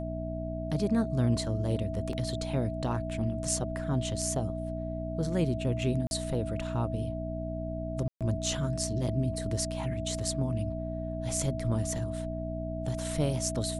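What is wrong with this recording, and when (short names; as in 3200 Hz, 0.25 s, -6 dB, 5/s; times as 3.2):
hum 60 Hz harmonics 5 -36 dBFS
tone 650 Hz -37 dBFS
2.13 gap 2.1 ms
6.07–6.11 gap 41 ms
8.08–8.21 gap 0.127 s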